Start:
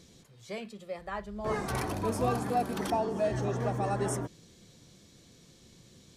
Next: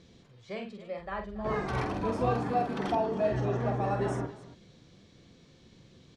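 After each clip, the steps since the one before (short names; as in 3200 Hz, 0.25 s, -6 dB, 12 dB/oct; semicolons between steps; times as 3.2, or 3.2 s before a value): LPF 3700 Hz 12 dB/oct; on a send: tapped delay 47/278 ms -6/-16 dB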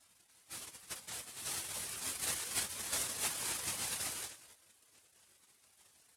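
noise vocoder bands 1; spectral gate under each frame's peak -10 dB weak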